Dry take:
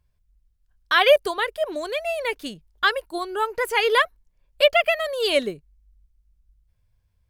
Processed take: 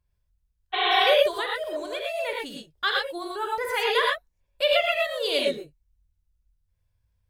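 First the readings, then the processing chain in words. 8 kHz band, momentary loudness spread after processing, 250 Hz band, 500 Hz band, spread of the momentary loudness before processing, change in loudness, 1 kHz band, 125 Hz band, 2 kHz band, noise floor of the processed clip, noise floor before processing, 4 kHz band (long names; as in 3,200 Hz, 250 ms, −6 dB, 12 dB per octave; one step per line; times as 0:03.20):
−3.5 dB, 12 LU, −4.0 dB, −3.5 dB, 11 LU, −3.0 dB, −2.0 dB, can't be measured, −3.5 dB, −74 dBFS, −69 dBFS, 0.0 dB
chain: healed spectral selection 0:00.76–0:00.97, 340–4,400 Hz after
dynamic equaliser 3,700 Hz, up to +6 dB, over −42 dBFS, Q 4
reverb whose tail is shaped and stops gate 140 ms rising, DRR −1.5 dB
level −7.5 dB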